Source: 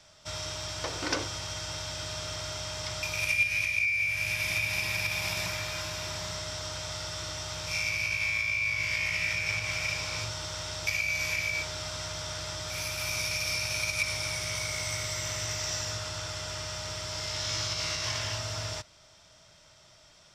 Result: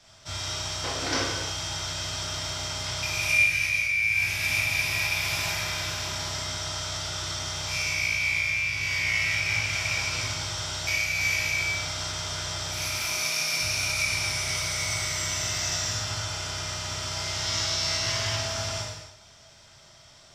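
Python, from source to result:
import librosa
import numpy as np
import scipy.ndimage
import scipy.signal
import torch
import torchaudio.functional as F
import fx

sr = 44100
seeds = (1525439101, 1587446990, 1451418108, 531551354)

y = fx.steep_highpass(x, sr, hz=150.0, slope=36, at=(12.95, 13.61))
y = fx.rev_gated(y, sr, seeds[0], gate_ms=360, shape='falling', drr_db=-5.5)
y = y * librosa.db_to_amplitude(-2.0)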